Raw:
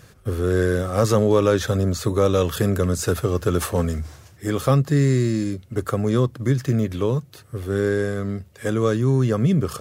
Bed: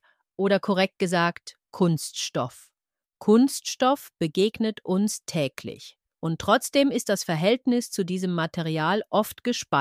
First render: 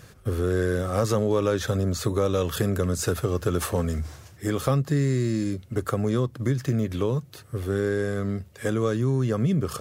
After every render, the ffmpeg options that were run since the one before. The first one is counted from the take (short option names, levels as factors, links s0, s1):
-af "acompressor=threshold=0.0708:ratio=2"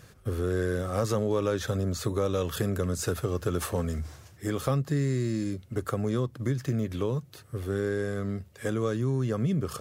-af "volume=0.631"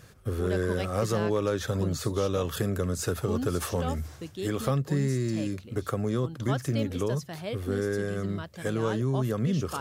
-filter_complex "[1:a]volume=0.2[s0];[0:a][s0]amix=inputs=2:normalize=0"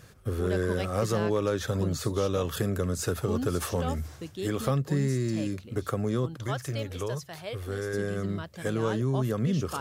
-filter_complex "[0:a]asettb=1/sr,asplit=3[s0][s1][s2];[s0]atrim=end=6.374[s3];[s1]atrim=start=6.37:end=7.94,asetpts=PTS-STARTPTS,afade=t=in:d=0.004:c=qsin,afade=t=out:st=1.566:d=0.004:c=qsin,equalizer=f=230:w=1.2:g=-12[s4];[s2]atrim=start=7.936[s5];[s3][s4]acrossfade=d=0.004:c1=hsin:c2=qsin[s6];[s6][s5]acrossfade=d=0.004:c1=qsin:c2=hsin"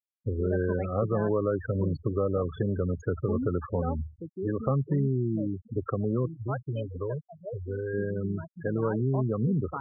-af "aemphasis=mode=reproduction:type=50fm,afftfilt=real='re*gte(hypot(re,im),0.0501)':imag='im*gte(hypot(re,im),0.0501)':win_size=1024:overlap=0.75"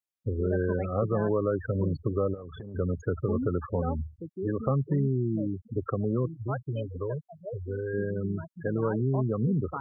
-filter_complex "[0:a]asplit=3[s0][s1][s2];[s0]afade=t=out:st=2.33:d=0.02[s3];[s1]acompressor=threshold=0.0141:ratio=10:attack=3.2:release=140:knee=1:detection=peak,afade=t=in:st=2.33:d=0.02,afade=t=out:st=2.74:d=0.02[s4];[s2]afade=t=in:st=2.74:d=0.02[s5];[s3][s4][s5]amix=inputs=3:normalize=0"